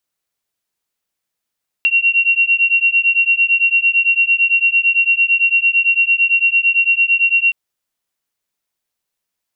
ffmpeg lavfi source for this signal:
-f lavfi -i "aevalsrc='0.2*(sin(2*PI*2740*t)+sin(2*PI*2748.9*t))':d=5.67:s=44100"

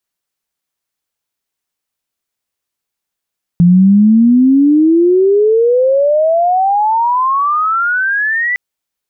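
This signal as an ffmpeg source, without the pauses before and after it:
-f lavfi -i "aevalsrc='pow(10,(-3.5-8.5*t/4.96)/20)*sin(2*PI*170*4.96/log(2000/170)*(exp(log(2000/170)*t/4.96)-1))':d=4.96:s=44100"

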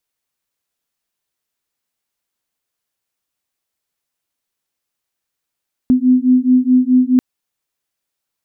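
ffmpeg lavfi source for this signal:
-f lavfi -i "aevalsrc='0.251*(sin(2*PI*251*t)+sin(2*PI*255.7*t))':d=1.29:s=44100"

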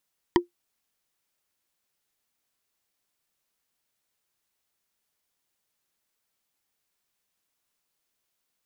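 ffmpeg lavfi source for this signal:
-f lavfi -i "aevalsrc='0.266*pow(10,-3*t/0.13)*sin(2*PI*350*t)+0.2*pow(10,-3*t/0.038)*sin(2*PI*965*t)+0.15*pow(10,-3*t/0.017)*sin(2*PI*1891.4*t)+0.112*pow(10,-3*t/0.009)*sin(2*PI*3126.5*t)+0.0841*pow(10,-3*t/0.006)*sin(2*PI*4669*t)':d=0.45:s=44100"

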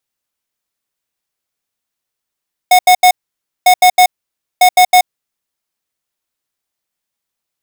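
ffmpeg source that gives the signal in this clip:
-f lavfi -i "aevalsrc='0.501*(2*lt(mod(730*t,1),0.5)-1)*clip(min(mod(mod(t,0.95),0.16),0.08-mod(mod(t,0.95),0.16))/0.005,0,1)*lt(mod(t,0.95),0.48)':d=2.85:s=44100"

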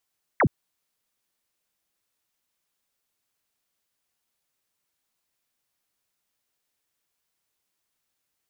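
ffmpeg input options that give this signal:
-f lavfi -i "aevalsrc='0.158*clip(t/0.002,0,1)*clip((0.07-t)/0.002,0,1)*sin(2*PI*2300*0.07/log(87/2300)*(exp(log(87/2300)*t/0.07)-1))':d=0.07:s=44100"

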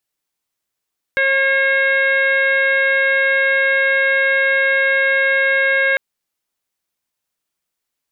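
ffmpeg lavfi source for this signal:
-f lavfi -i "aevalsrc='0.106*sin(2*PI*541*t)+0.0211*sin(2*PI*1082*t)+0.178*sin(2*PI*1623*t)+0.119*sin(2*PI*2164*t)+0.0316*sin(2*PI*2705*t)+0.0133*sin(2*PI*3246*t)+0.0224*sin(2*PI*3787*t)':d=4.8:s=44100"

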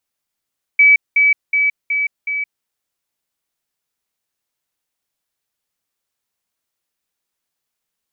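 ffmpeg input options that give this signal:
-f lavfi -i "aevalsrc='pow(10,(-6-3*floor(t/0.37))/20)*sin(2*PI*2290*t)*clip(min(mod(t,0.37),0.17-mod(t,0.37))/0.005,0,1)':d=1.85:s=44100"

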